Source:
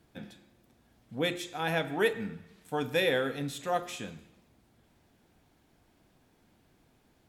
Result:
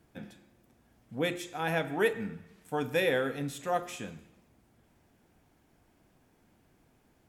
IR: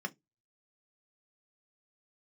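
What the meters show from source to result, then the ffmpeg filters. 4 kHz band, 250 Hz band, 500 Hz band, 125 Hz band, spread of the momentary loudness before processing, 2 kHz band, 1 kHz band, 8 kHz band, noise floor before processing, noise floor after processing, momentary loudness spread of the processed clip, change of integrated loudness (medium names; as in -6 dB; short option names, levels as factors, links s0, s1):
-4.0 dB, 0.0 dB, 0.0 dB, 0.0 dB, 19 LU, -0.5 dB, 0.0 dB, -0.5 dB, -67 dBFS, -68 dBFS, 18 LU, -0.5 dB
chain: -af "equalizer=f=3900:w=2:g=-5.5"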